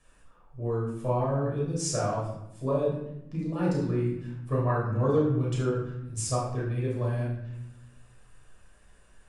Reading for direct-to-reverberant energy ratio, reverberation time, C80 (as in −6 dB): −6.0 dB, 0.85 s, 5.5 dB